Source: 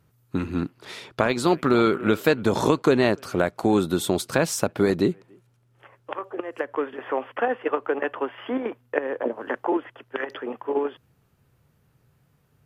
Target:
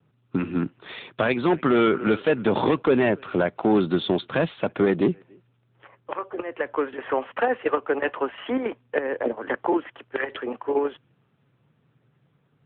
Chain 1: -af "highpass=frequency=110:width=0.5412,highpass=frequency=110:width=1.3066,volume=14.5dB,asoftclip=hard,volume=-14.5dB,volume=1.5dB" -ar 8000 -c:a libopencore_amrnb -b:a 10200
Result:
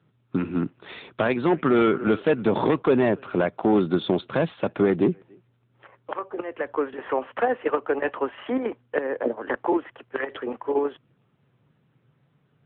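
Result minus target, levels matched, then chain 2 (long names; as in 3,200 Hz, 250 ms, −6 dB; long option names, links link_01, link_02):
4,000 Hz band −3.5 dB
-af "highpass=frequency=110:width=0.5412,highpass=frequency=110:width=1.3066,adynamicequalizer=threshold=0.00891:dfrequency=3000:dqfactor=0.73:tfrequency=3000:tqfactor=0.73:attack=5:release=100:ratio=0.45:range=2:mode=boostabove:tftype=bell,volume=14.5dB,asoftclip=hard,volume=-14.5dB,volume=1.5dB" -ar 8000 -c:a libopencore_amrnb -b:a 10200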